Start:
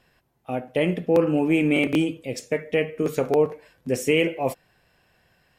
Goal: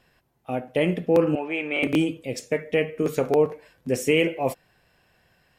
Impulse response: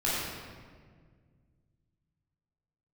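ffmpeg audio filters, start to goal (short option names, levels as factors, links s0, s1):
-filter_complex "[0:a]asettb=1/sr,asplit=3[s0][s1][s2];[s0]atrim=end=1.354[s3];[s1]atrim=start=1.35:end=1.83,asetpts=PTS-STARTPTS,afade=t=in:d=0.004:c=qsin,afade=t=out:st=0.476:d=0.004:c=qsin,acrossover=split=470 4300:gain=0.1 1 0.1[s4][s5][s6];[s4][s5][s6]amix=inputs=3:normalize=0[s7];[s2]atrim=start=1.826[s8];[s3][s7]acrossfade=d=0.004:c1=hsin:c2=qsin[s9];[s9][s8]acrossfade=d=0.004:c1=qsin:c2=hsin"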